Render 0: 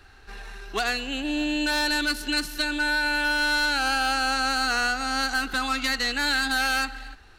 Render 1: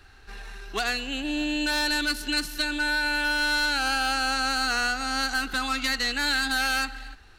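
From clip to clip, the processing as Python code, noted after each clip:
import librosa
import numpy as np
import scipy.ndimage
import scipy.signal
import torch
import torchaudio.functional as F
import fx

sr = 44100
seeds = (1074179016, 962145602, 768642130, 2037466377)

y = fx.peak_eq(x, sr, hz=620.0, db=-2.5, octaves=2.7)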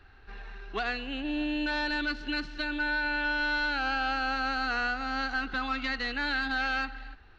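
y = scipy.ndimage.gaussian_filter1d(x, 2.3, mode='constant')
y = F.gain(torch.from_numpy(y), -2.5).numpy()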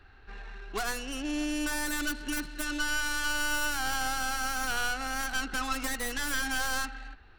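y = fx.tracing_dist(x, sr, depth_ms=0.3)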